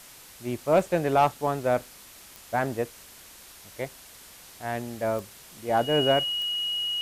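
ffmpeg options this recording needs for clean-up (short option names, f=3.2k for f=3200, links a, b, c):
-af "adeclick=t=4,bandreject=f=2.9k:w=30,afwtdn=0.0045"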